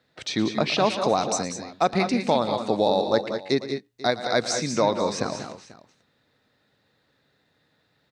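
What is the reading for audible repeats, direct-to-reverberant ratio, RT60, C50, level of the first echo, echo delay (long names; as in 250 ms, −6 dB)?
3, no reverb audible, no reverb audible, no reverb audible, −15.0 dB, 115 ms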